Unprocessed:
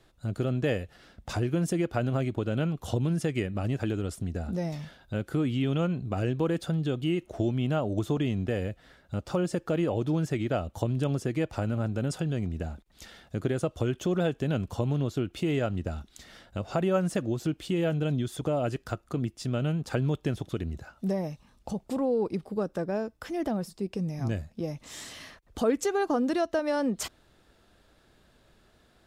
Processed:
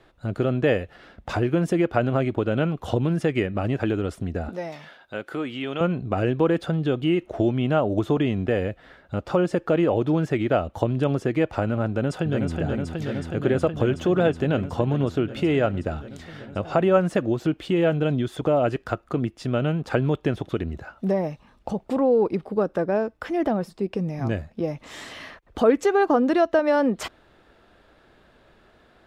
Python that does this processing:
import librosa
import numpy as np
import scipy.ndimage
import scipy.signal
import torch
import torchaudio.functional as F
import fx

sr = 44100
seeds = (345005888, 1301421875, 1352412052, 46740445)

y = fx.highpass(x, sr, hz=710.0, slope=6, at=(4.49, 5.81))
y = fx.echo_throw(y, sr, start_s=11.88, length_s=0.69, ms=370, feedback_pct=85, wet_db=-4.0)
y = fx.bass_treble(y, sr, bass_db=-6, treble_db=-14)
y = y * librosa.db_to_amplitude(8.5)